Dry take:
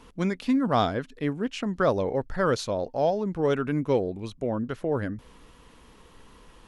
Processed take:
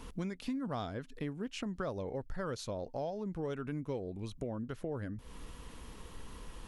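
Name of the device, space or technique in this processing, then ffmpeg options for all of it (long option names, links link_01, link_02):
ASMR close-microphone chain: -af "lowshelf=frequency=150:gain=7.5,acompressor=threshold=-38dB:ratio=4,highshelf=frequency=6600:gain=7"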